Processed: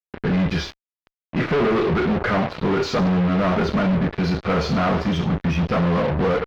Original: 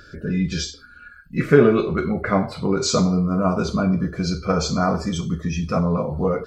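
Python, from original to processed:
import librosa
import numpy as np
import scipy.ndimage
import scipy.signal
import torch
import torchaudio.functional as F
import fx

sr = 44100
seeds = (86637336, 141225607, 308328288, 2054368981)

y = fx.low_shelf(x, sr, hz=310.0, db=-5.0)
y = fx.fuzz(y, sr, gain_db=35.0, gate_db=-33.0)
y = fx.air_absorb(y, sr, metres=280.0)
y = y * librosa.db_to_amplitude(-3.0)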